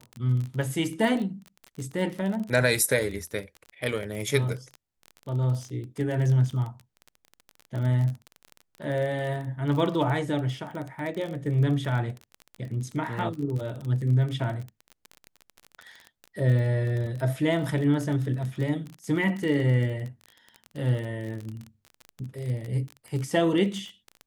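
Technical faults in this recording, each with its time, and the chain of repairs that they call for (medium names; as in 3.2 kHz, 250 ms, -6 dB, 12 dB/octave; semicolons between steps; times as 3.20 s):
crackle 27 per s -31 dBFS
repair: de-click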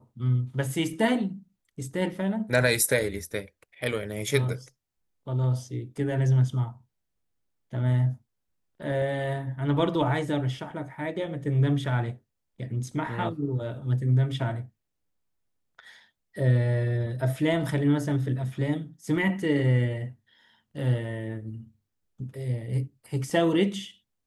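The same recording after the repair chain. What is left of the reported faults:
nothing left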